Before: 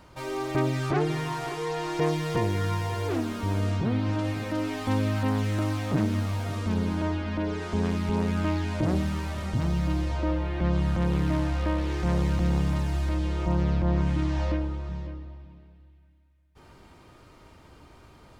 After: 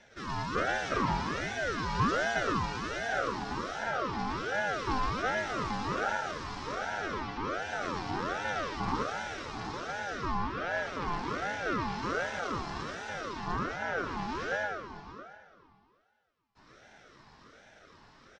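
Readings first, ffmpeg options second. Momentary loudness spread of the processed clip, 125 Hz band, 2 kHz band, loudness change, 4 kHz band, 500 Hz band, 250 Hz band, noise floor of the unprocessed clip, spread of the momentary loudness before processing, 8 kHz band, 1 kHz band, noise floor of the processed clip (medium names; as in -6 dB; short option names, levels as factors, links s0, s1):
8 LU, -15.0 dB, +4.5 dB, -5.5 dB, -0.5 dB, -4.5 dB, -11.0 dB, -54 dBFS, 5 LU, -1.5 dB, +2.5 dB, -62 dBFS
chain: -af "highpass=f=240:w=0.5412,highpass=f=240:w=1.3066,equalizer=f=510:t=q:w=4:g=9,equalizer=f=3200:t=q:w=4:g=-3,equalizer=f=4700:t=q:w=4:g=9,lowpass=f=6500:w=0.5412,lowpass=f=6500:w=1.3066,aecho=1:1:116.6|262.4:0.891|0.316,aeval=exprs='val(0)*sin(2*PI*830*n/s+830*0.4/1.3*sin(2*PI*1.3*n/s))':c=same,volume=0.668"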